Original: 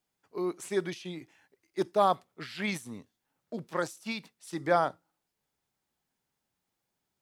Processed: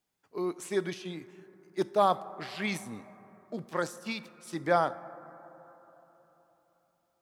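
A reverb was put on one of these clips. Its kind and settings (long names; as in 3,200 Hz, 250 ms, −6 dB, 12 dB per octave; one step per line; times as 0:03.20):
dense smooth reverb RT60 3.8 s, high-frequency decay 0.25×, DRR 15.5 dB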